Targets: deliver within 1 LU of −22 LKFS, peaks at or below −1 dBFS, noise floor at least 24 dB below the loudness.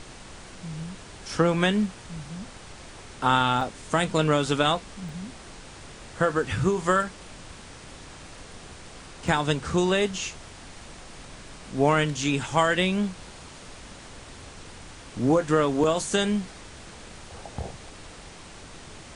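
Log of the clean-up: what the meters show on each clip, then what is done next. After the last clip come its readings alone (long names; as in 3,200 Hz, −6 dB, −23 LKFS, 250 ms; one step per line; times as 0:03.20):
number of dropouts 3; longest dropout 2.3 ms; background noise floor −45 dBFS; target noise floor −49 dBFS; integrated loudness −25.0 LKFS; sample peak −8.0 dBFS; target loudness −22.0 LKFS
→ repair the gap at 0:03.61/0:05.09/0:09.28, 2.3 ms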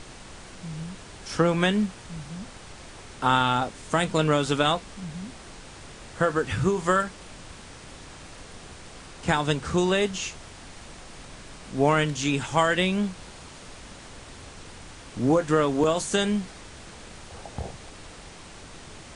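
number of dropouts 0; background noise floor −45 dBFS; target noise floor −49 dBFS
→ noise reduction from a noise print 6 dB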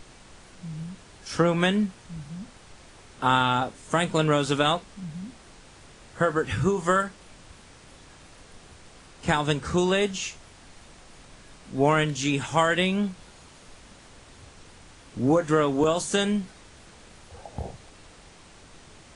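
background noise floor −51 dBFS; integrated loudness −25.0 LKFS; sample peak −8.0 dBFS; target loudness −22.0 LKFS
→ level +3 dB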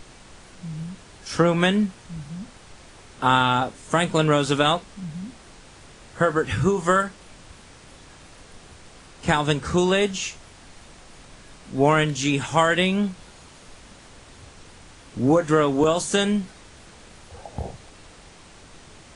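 integrated loudness −22.0 LKFS; sample peak −5.0 dBFS; background noise floor −48 dBFS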